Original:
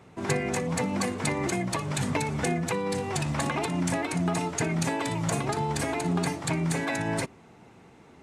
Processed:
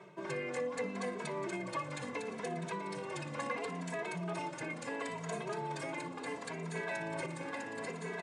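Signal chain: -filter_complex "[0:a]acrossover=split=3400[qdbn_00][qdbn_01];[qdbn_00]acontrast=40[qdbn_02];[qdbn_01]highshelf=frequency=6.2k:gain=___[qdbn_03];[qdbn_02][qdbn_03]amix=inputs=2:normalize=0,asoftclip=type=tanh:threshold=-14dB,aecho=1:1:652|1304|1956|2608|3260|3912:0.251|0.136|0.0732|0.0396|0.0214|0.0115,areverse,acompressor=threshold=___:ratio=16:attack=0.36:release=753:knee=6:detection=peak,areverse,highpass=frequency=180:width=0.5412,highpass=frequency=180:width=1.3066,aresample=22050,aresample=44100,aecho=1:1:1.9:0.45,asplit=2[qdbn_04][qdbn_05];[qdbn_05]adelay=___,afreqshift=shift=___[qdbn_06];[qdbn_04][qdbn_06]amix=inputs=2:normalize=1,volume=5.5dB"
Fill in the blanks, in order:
-3, -34dB, 2.7, -0.72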